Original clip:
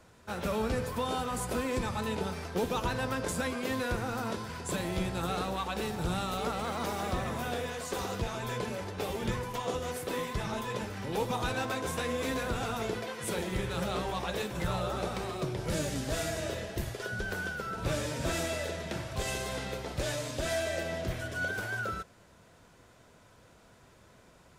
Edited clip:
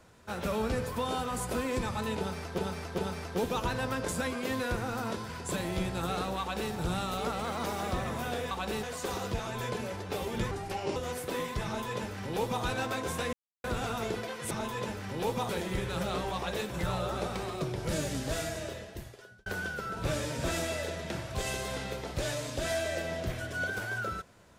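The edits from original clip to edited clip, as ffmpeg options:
ffmpeg -i in.wav -filter_complex "[0:a]asplit=12[link_01][link_02][link_03][link_04][link_05][link_06][link_07][link_08][link_09][link_10][link_11][link_12];[link_01]atrim=end=2.582[link_13];[link_02]atrim=start=2.178:end=2.582[link_14];[link_03]atrim=start=2.178:end=7.712[link_15];[link_04]atrim=start=5.598:end=5.922[link_16];[link_05]atrim=start=7.708:end=9.394[link_17];[link_06]atrim=start=9.39:end=9.75,asetpts=PTS-STARTPTS,asetrate=35280,aresample=44100[link_18];[link_07]atrim=start=9.746:end=12.12,asetpts=PTS-STARTPTS,afade=type=out:start_time=2.37:duration=0.004:curve=hsin[link_19];[link_08]atrim=start=12.12:end=12.43,asetpts=PTS-STARTPTS,volume=0[link_20];[link_09]atrim=start=12.43:end=13.302,asetpts=PTS-STARTPTS,afade=type=in:duration=0.004:curve=hsin[link_21];[link_10]atrim=start=10.438:end=11.422[link_22];[link_11]atrim=start=13.298:end=17.27,asetpts=PTS-STARTPTS,afade=type=out:start_time=2.792:duration=1.18[link_23];[link_12]atrim=start=17.27,asetpts=PTS-STARTPTS,afade=type=in:duration=0.004:curve=hsin[link_24];[link_13][link_14]acrossfade=duration=0.004:curve1=hsin:curve2=hsin[link_25];[link_25][link_15]acrossfade=duration=0.004:curve1=hsin:curve2=hsin[link_26];[link_26][link_16]acrossfade=duration=0.004:curve1=hsin:curve2=hsin[link_27];[link_27][link_17]acrossfade=duration=0.004:curve1=hsin:curve2=hsin[link_28];[link_28][link_18]acrossfade=duration=0.004:curve1=hsin:curve2=hsin[link_29];[link_19][link_20][link_21]concat=n=3:v=0:a=1[link_30];[link_29][link_30]acrossfade=duration=0.004:curve1=hsin:curve2=hsin[link_31];[link_31][link_22]acrossfade=duration=0.004:curve1=hsin:curve2=hsin[link_32];[link_23][link_24]concat=n=2:v=0:a=1[link_33];[link_32][link_33]acrossfade=duration=0.004:curve1=hsin:curve2=hsin" out.wav

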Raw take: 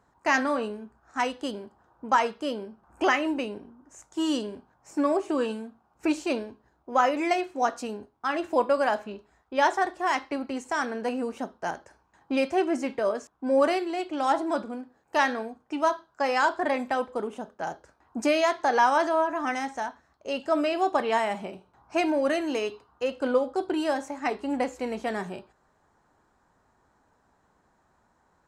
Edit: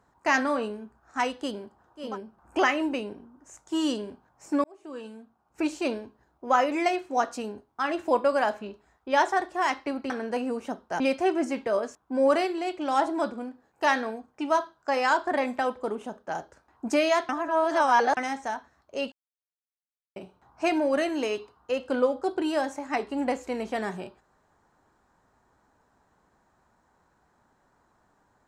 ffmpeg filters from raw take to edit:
ffmpeg -i in.wav -filter_complex "[0:a]asplit=9[link_01][link_02][link_03][link_04][link_05][link_06][link_07][link_08][link_09];[link_01]atrim=end=2.18[link_10];[link_02]atrim=start=2.39:end=5.09,asetpts=PTS-STARTPTS,afade=type=out:start_time=2.696:duration=0.004:curve=hsin[link_11];[link_03]atrim=start=5.09:end=10.552,asetpts=PTS-STARTPTS,afade=type=in:duration=1.3[link_12];[link_04]atrim=start=10.818:end=11.722[link_13];[link_05]atrim=start=12.318:end=18.612[link_14];[link_06]atrim=start=18.608:end=19.492,asetpts=PTS-STARTPTS,areverse[link_15];[link_07]atrim=start=19.488:end=20.44,asetpts=PTS-STARTPTS,afade=type=out:start_time=0.948:duration=0.004:curve=hsin[link_16];[link_08]atrim=start=20.44:end=21.48,asetpts=PTS-STARTPTS,volume=0[link_17];[link_09]atrim=start=21.48,asetpts=PTS-STARTPTS,afade=type=in:duration=0.004:curve=hsin[link_18];[link_11][link_12]concat=n=2:v=0:a=1[link_19];[link_10][link_19]acrossfade=duration=0.24:curve1=tri:curve2=tri[link_20];[link_20][link_13]acrossfade=duration=0.004:curve1=hsin:curve2=hsin[link_21];[link_21][link_14]acrossfade=duration=0.004:curve1=hsin:curve2=hsin[link_22];[link_22][link_15]acrossfade=duration=0.004:curve1=hsin:curve2=hsin[link_23];[link_16][link_17][link_18]concat=n=3:v=0:a=1[link_24];[link_23][link_24]acrossfade=duration=0.004:curve1=hsin:curve2=hsin" out.wav

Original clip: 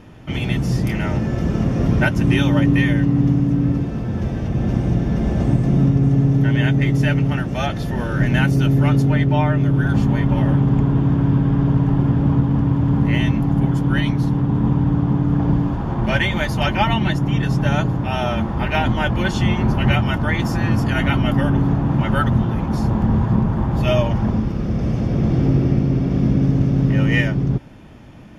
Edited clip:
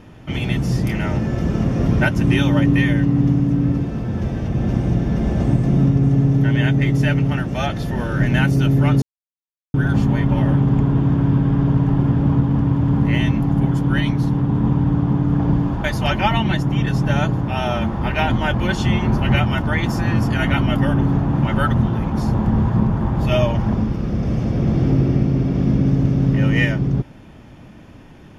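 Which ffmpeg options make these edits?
ffmpeg -i in.wav -filter_complex "[0:a]asplit=4[link_01][link_02][link_03][link_04];[link_01]atrim=end=9.02,asetpts=PTS-STARTPTS,afade=type=out:start_time=9.016:duration=0.004:curve=hsin[link_05];[link_02]atrim=start=9.02:end=9.74,asetpts=PTS-STARTPTS,volume=0[link_06];[link_03]atrim=start=9.74:end=15.842,asetpts=PTS-STARTPTS,afade=type=in:duration=0.004:curve=hsin[link_07];[link_04]atrim=start=16.398[link_08];[link_05][link_06][link_07]concat=n=3:v=0:a=1[link_09];[link_09][link_08]acrossfade=duration=0.004:curve1=hsin:curve2=hsin" out.wav

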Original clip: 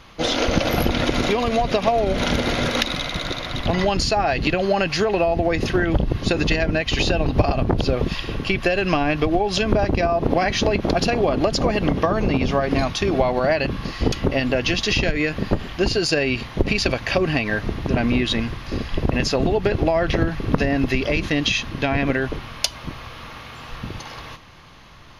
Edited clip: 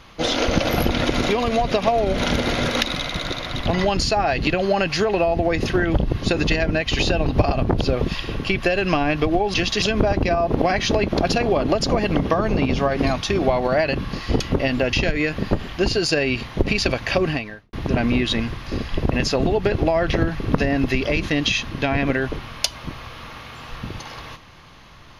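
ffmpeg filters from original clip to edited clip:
ffmpeg -i in.wav -filter_complex "[0:a]asplit=5[link_01][link_02][link_03][link_04][link_05];[link_01]atrim=end=9.542[link_06];[link_02]atrim=start=14.648:end=14.932[link_07];[link_03]atrim=start=9.538:end=14.652[link_08];[link_04]atrim=start=14.928:end=17.73,asetpts=PTS-STARTPTS,afade=type=out:start_time=2.352:duration=0.45:curve=qua[link_09];[link_05]atrim=start=17.73,asetpts=PTS-STARTPTS,afade=type=in:duration=0.004:curve=hsin[link_10];[link_06][link_07]acrossfade=duration=0.004:curve1=hsin:curve2=hsin[link_11];[link_11][link_08]acrossfade=duration=0.004:curve1=hsin:curve2=hsin[link_12];[link_09][link_10]concat=n=2:v=0:a=1[link_13];[link_12][link_13]acrossfade=duration=0.004:curve1=hsin:curve2=hsin" out.wav

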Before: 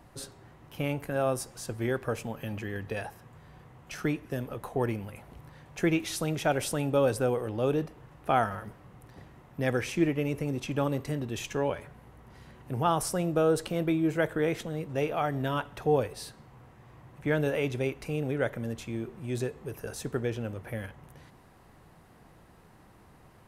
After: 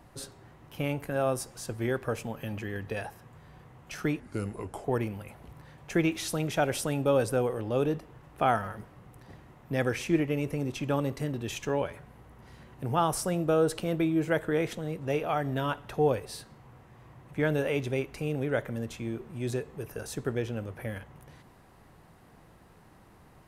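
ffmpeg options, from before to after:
ffmpeg -i in.wav -filter_complex "[0:a]asplit=3[link_01][link_02][link_03];[link_01]atrim=end=4.204[link_04];[link_02]atrim=start=4.2:end=4.72,asetpts=PTS-STARTPTS,asetrate=35721,aresample=44100,atrim=end_sample=28311,asetpts=PTS-STARTPTS[link_05];[link_03]atrim=start=4.716[link_06];[link_04][link_05]acrossfade=duration=0.004:curve1=hsin:curve2=hsin[link_07];[link_07][link_06]acrossfade=duration=0.004:curve1=hsin:curve2=hsin" out.wav

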